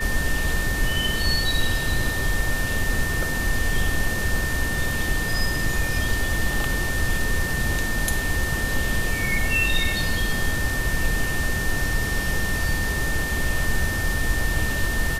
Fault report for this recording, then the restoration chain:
whine 1.8 kHz -27 dBFS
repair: band-stop 1.8 kHz, Q 30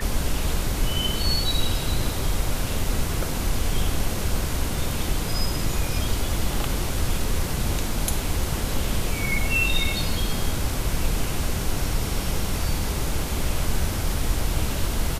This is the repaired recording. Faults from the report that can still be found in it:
nothing left

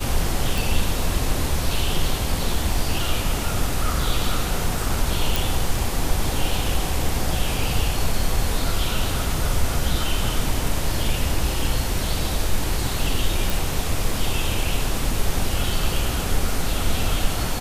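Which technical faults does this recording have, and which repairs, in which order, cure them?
0.58 s: pop
5.36 s: pop
13.50 s: pop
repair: de-click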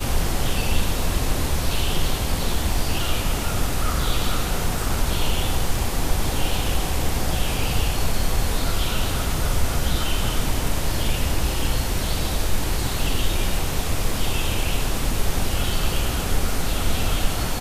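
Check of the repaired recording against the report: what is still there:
nothing left

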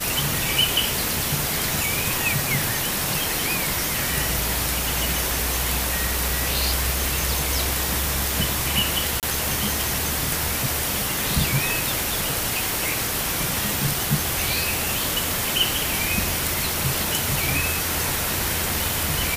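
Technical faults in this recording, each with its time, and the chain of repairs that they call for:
crackle 34 per s -27 dBFS
9.20–9.23 s: dropout 28 ms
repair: de-click; interpolate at 9.20 s, 28 ms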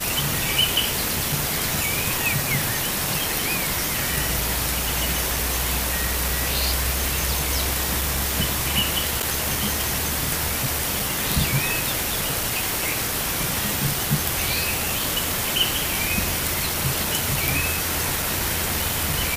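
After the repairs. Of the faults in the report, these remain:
nothing left

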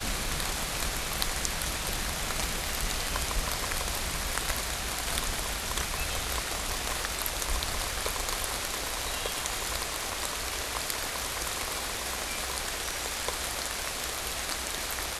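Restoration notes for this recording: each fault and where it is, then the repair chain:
crackle 47 per s -39 dBFS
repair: de-click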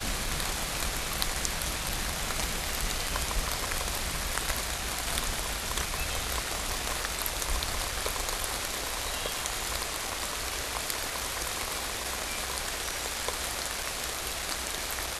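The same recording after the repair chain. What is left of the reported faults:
nothing left

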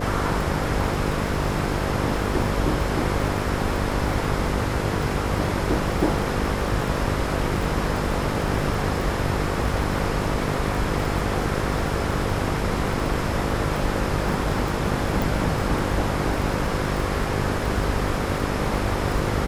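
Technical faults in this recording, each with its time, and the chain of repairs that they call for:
buzz 50 Hz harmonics 11 -28 dBFS
crackle 35 per s -28 dBFS
15.22 s: pop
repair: de-click; de-hum 50 Hz, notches 11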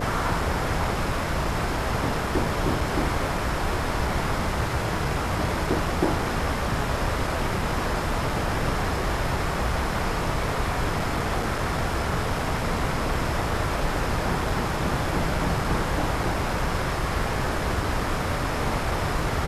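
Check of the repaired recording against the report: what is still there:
nothing left

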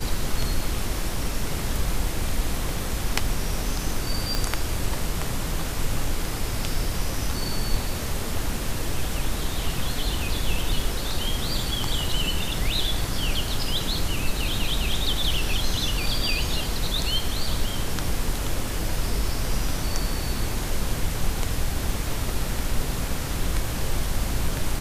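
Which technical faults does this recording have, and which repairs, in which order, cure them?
4.35 s: pop -10 dBFS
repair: de-click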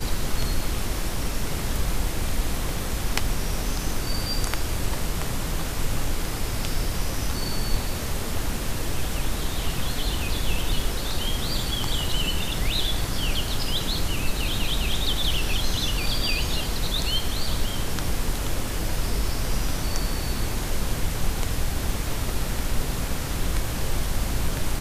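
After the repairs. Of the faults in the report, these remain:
4.35 s: pop

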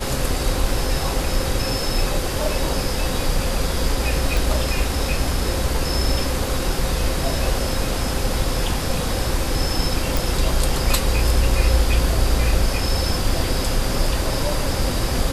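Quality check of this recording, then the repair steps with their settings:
4.37 s: pop
10.17 s: pop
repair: de-click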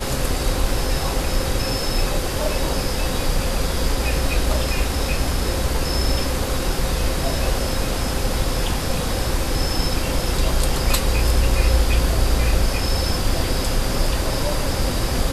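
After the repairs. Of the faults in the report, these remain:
nothing left

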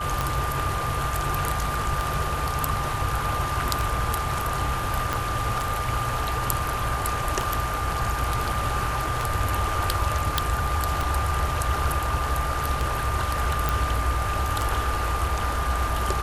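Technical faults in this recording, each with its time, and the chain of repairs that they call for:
tick 33 1/3 rpm
whine 1.2 kHz -29 dBFS
5.13 s: pop -10 dBFS
10.38 s: pop
13.69 s: pop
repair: de-click; band-stop 1.2 kHz, Q 30

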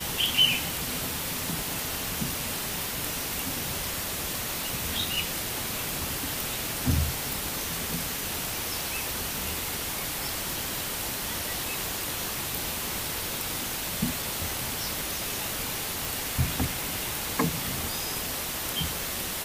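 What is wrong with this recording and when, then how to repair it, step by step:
16.05 s: pop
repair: de-click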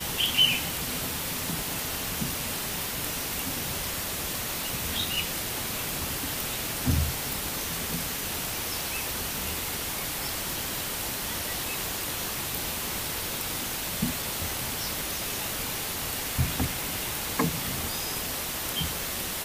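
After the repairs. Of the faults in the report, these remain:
nothing left

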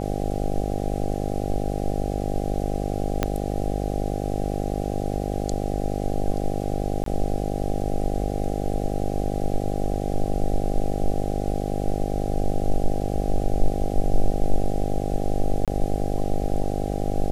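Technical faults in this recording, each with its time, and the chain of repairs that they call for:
buzz 50 Hz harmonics 16 -27 dBFS
3.23 s: pop -7 dBFS
7.04–7.06 s: dropout 23 ms
15.65–15.68 s: dropout 27 ms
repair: de-click; de-hum 50 Hz, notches 16; interpolate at 7.04 s, 23 ms; interpolate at 15.65 s, 27 ms

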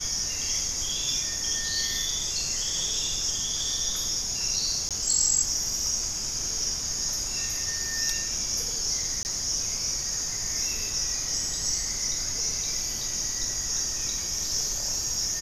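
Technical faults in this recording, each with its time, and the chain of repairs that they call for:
4.89–4.91 s: dropout 17 ms
9.23–9.25 s: dropout 19 ms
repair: interpolate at 4.89 s, 17 ms; interpolate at 9.23 s, 19 ms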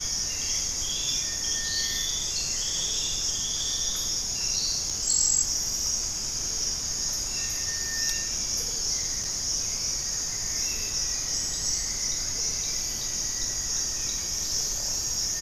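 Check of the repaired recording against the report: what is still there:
nothing left

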